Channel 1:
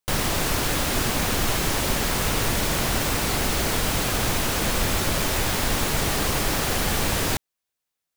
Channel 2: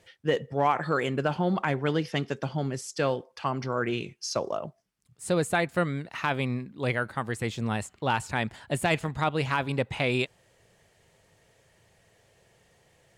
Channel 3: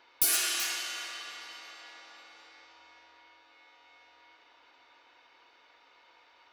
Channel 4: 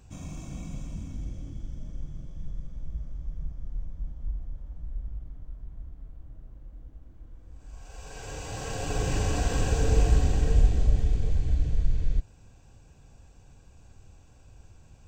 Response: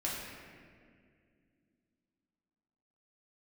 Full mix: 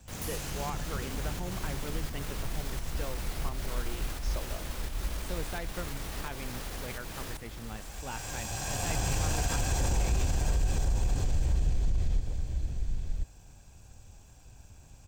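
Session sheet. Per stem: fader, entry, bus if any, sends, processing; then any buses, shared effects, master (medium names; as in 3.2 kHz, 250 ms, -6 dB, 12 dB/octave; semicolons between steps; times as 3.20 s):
-10.5 dB, 0.00 s, no send, echo send -6.5 dB, peak limiter -22 dBFS, peak gain reduction 11 dB; volume shaper 86 bpm, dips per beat 1, -12 dB, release 238 ms
-14.5 dB, 0.00 s, no send, no echo send, none
-16.5 dB, 0.00 s, no send, no echo send, none
0.0 dB, 0.00 s, no send, echo send -7 dB, comb filter that takes the minimum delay 1.2 ms; treble shelf 5.4 kHz +10 dB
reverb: none
echo: delay 1033 ms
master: peak limiter -20 dBFS, peak gain reduction 11 dB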